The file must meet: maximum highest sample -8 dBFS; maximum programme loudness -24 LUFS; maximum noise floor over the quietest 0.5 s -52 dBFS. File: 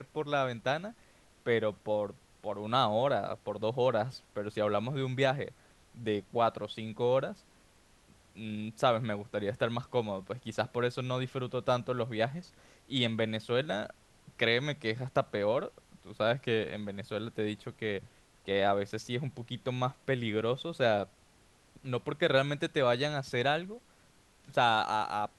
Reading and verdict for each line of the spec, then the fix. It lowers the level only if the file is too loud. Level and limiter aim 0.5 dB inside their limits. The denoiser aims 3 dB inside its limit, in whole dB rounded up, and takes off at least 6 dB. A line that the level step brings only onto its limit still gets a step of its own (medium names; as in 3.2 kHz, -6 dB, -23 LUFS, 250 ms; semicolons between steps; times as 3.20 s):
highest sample -13.0 dBFS: pass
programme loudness -32.5 LUFS: pass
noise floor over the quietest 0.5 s -63 dBFS: pass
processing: none needed